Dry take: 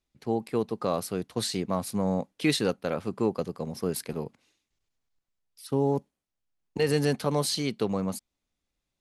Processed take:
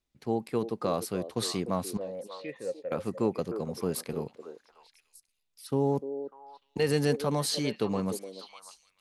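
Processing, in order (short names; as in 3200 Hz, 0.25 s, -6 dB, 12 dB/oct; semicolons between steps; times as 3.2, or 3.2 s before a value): 1.97–2.92 vocal tract filter e; delay with a stepping band-pass 0.298 s, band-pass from 430 Hz, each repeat 1.4 oct, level -7 dB; gain -1.5 dB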